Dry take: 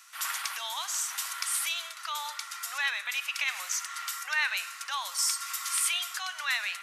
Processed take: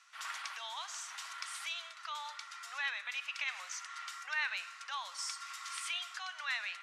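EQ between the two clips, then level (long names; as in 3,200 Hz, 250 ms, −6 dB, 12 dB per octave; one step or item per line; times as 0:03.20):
high-frequency loss of the air 92 metres
−6.0 dB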